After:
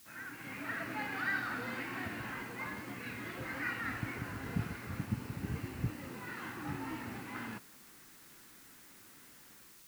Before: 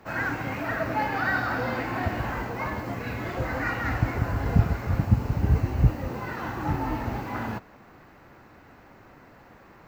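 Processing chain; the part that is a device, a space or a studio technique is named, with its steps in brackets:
dictaphone (band-pass filter 280–3,400 Hz; automatic gain control gain up to 10.5 dB; tape wow and flutter; white noise bed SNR 24 dB)
guitar amp tone stack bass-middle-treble 6-0-2
level +3 dB

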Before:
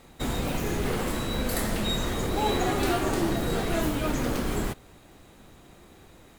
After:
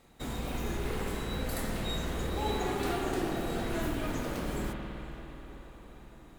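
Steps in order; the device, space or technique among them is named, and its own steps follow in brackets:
dub delay into a spring reverb (feedback echo with a low-pass in the loop 470 ms, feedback 70%, low-pass 3,600 Hz, level −15 dB; spring reverb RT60 3.6 s, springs 52 ms, chirp 40 ms, DRR 1.5 dB)
level −8.5 dB

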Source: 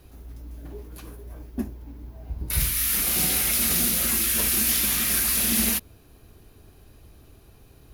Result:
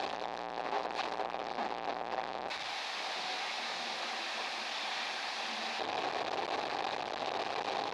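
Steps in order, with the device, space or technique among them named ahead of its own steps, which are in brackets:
home computer beeper (sign of each sample alone; loudspeaker in its box 640–4,000 Hz, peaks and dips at 780 Hz +8 dB, 1,400 Hz −6 dB, 2,100 Hz −4 dB, 3,000 Hz −6 dB)

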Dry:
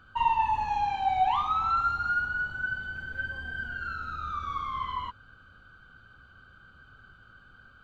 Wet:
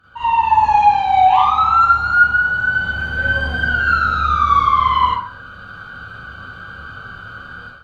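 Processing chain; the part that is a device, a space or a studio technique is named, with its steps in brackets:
far-field microphone of a smart speaker (convolution reverb RT60 0.45 s, pre-delay 36 ms, DRR −9 dB; high-pass filter 87 Hz 6 dB per octave; automatic gain control gain up to 14 dB; level −1 dB; Opus 48 kbit/s 48,000 Hz)

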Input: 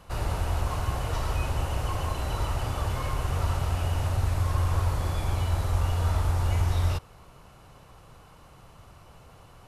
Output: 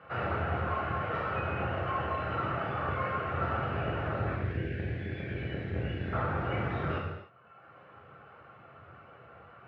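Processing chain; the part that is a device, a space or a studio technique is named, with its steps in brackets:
0:04.37–0:06.13: Chebyshev band-stop filter 400–1,600 Hz, order 5
sub-octave bass pedal (sub-octave generator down 2 octaves, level +4 dB; loudspeaker in its box 85–2,400 Hz, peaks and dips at 91 Hz +9 dB, 180 Hz −5 dB, 270 Hz −10 dB, 950 Hz −8 dB, 1,400 Hz +9 dB)
reverb reduction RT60 1.5 s
high-pass filter 190 Hz 12 dB per octave
reverb whose tail is shaped and stops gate 340 ms falling, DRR −3.5 dB

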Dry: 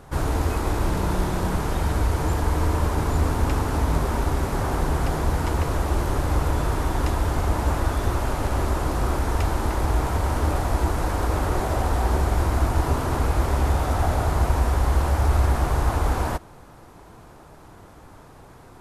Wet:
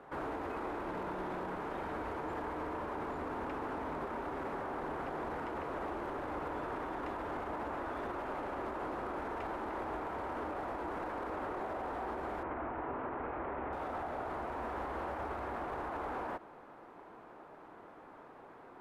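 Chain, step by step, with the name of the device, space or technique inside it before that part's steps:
DJ mixer with the lows and highs turned down (three-way crossover with the lows and the highs turned down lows −22 dB, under 230 Hz, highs −22 dB, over 2,700 Hz; brickwall limiter −27.5 dBFS, peak gain reduction 11 dB)
0:12.43–0:13.73: low-pass filter 2,600 Hz 24 dB per octave
level −4 dB

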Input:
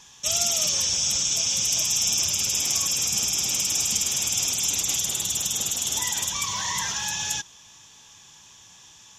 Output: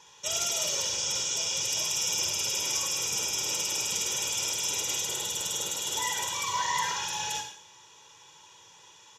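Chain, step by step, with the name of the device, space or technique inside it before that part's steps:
high-pass filter 260 Hz 12 dB per octave
low-shelf EQ 97 Hz +12 dB
high-shelf EQ 3,300 Hz −10 dB
microphone above a desk (comb filter 2.1 ms, depth 71%; convolution reverb RT60 0.60 s, pre-delay 41 ms, DRR 5 dB)
level −1 dB

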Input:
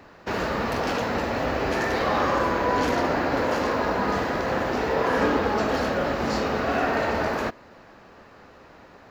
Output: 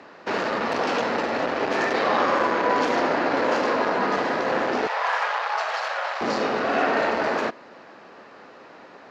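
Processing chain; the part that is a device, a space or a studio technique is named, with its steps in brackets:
public-address speaker with an overloaded transformer (saturating transformer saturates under 870 Hz; band-pass filter 240–6,100 Hz)
0:04.87–0:06.21: inverse Chebyshev high-pass filter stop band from 270 Hz, stop band 50 dB
level +4 dB

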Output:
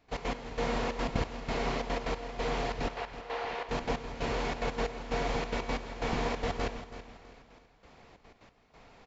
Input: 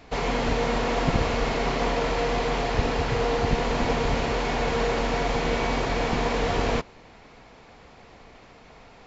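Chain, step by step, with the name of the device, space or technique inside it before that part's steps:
0:02.88–0:03.69: three-way crossover with the lows and the highs turned down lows −23 dB, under 460 Hz, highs −14 dB, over 4,200 Hz
trance gate with a delay (gate pattern ".x.x...xxxx" 182 BPM −12 dB; repeating echo 328 ms, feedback 37%, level −13 dB)
level −6.5 dB

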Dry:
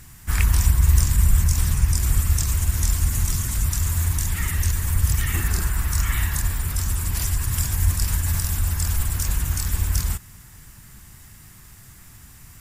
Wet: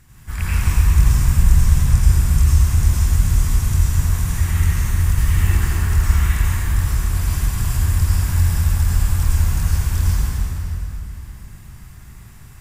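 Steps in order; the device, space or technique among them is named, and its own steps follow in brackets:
swimming-pool hall (convolution reverb RT60 3.2 s, pre-delay 78 ms, DRR −8.5 dB; high-shelf EQ 4,300 Hz −7 dB)
level −5.5 dB

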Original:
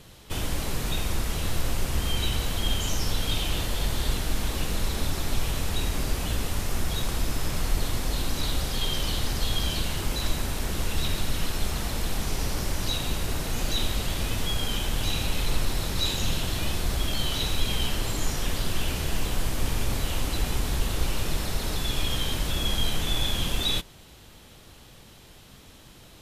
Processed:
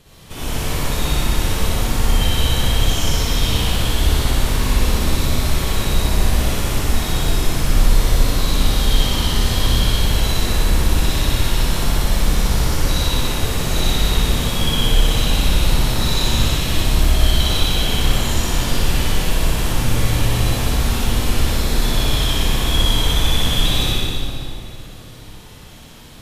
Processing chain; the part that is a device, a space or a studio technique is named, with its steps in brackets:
tunnel (flutter between parallel walls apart 10.4 metres, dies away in 0.94 s; convolution reverb RT60 2.6 s, pre-delay 50 ms, DRR −8.5 dB)
level −2 dB

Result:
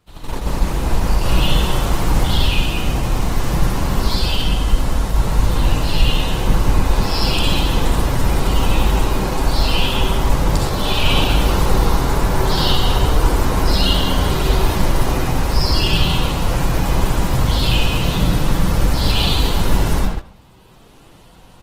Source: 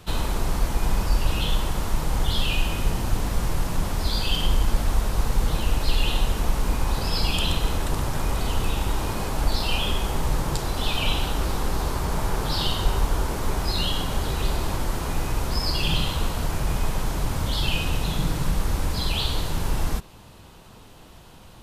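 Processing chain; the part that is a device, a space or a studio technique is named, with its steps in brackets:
speakerphone in a meeting room (convolution reverb RT60 0.70 s, pre-delay 54 ms, DRR −2 dB; far-end echo of a speakerphone 210 ms, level −7 dB; automatic gain control gain up to 12 dB; noise gate −17 dBFS, range −13 dB; level −1.5 dB; Opus 16 kbit/s 48,000 Hz)

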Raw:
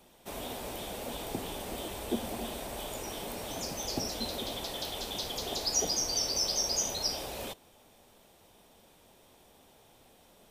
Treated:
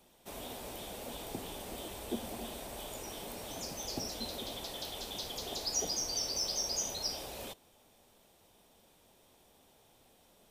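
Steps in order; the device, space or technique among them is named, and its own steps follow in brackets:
exciter from parts (in parallel at −12 dB: high-pass filter 2,500 Hz + soft clipping −35.5 dBFS, distortion −6 dB)
on the sum: level −5 dB

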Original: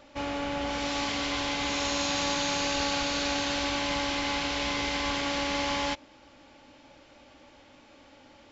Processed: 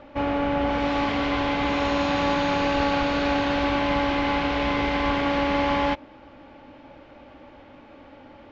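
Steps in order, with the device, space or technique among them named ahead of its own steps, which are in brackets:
phone in a pocket (low-pass filter 3,200 Hz 12 dB per octave; high-shelf EQ 2,400 Hz −10.5 dB)
level +9 dB

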